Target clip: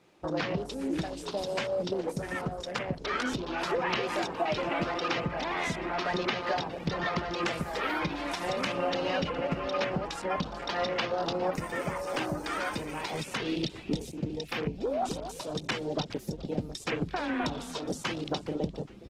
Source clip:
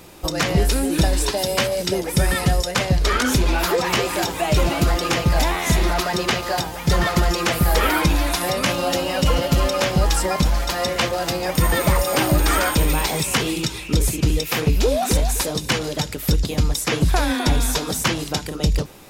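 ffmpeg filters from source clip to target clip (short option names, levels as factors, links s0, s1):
-filter_complex "[0:a]aemphasis=mode=production:type=50kf,afwtdn=0.0501,asettb=1/sr,asplit=3[s0][s1][s2];[s0]atrim=end=4.354[s3];[s1]atrim=start=4.35:end=5.16,asetpts=PTS-STARTPTS,afade=t=in:d=0.004:c=qsin,afade=t=out:st=0.806:d=0.004:c=qsin,lowshelf=f=260:g=-7.5[s4];[s2]atrim=start=5.156[s5];[s3][s4]acrossfade=d=0.004:c1=hsin:c2=qsin[s6];[s6][s5]acrossfade=d=0.004:c1=qsin:c2=hsin,acompressor=threshold=0.0562:ratio=10,highpass=160,lowpass=3200,asplit=4[s7][s8][s9][s10];[s8]adelay=414,afreqshift=-100,volume=0.126[s11];[s9]adelay=828,afreqshift=-200,volume=0.0479[s12];[s10]adelay=1242,afreqshift=-300,volume=0.0182[s13];[s7][s11][s12][s13]amix=inputs=4:normalize=0" -ar 48000 -c:a libopus -b:a 16k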